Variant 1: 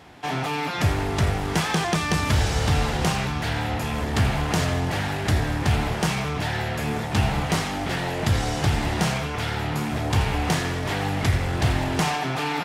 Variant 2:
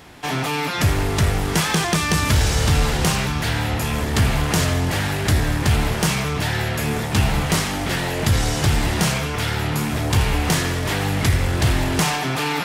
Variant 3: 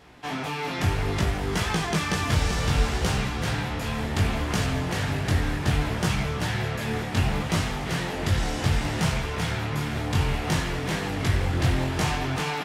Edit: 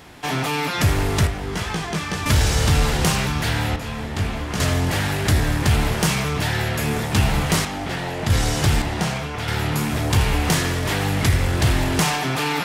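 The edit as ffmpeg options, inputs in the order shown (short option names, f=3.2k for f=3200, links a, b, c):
-filter_complex "[2:a]asplit=2[a][b];[0:a]asplit=2[c][d];[1:a]asplit=5[e][f][g][h][i];[e]atrim=end=1.272[j];[a]atrim=start=1.268:end=2.262[k];[f]atrim=start=2.258:end=3.762[l];[b]atrim=start=3.758:end=4.602[m];[g]atrim=start=4.598:end=7.652[n];[c]atrim=start=7.648:end=8.302[o];[h]atrim=start=8.298:end=8.822[p];[d]atrim=start=8.818:end=9.482[q];[i]atrim=start=9.478[r];[j][k]acrossfade=d=0.004:c1=hsin:c2=hsin[s];[s][l]acrossfade=d=0.004:c1=hsin:c2=hsin[t];[t][m]acrossfade=d=0.004:c1=hsin:c2=hsin[u];[u][n]acrossfade=d=0.004:c1=hsin:c2=hsin[v];[v][o]acrossfade=d=0.004:c1=hsin:c2=hsin[w];[w][p]acrossfade=d=0.004:c1=hsin:c2=hsin[x];[x][q]acrossfade=d=0.004:c1=hsin:c2=hsin[y];[y][r]acrossfade=d=0.004:c1=hsin:c2=hsin"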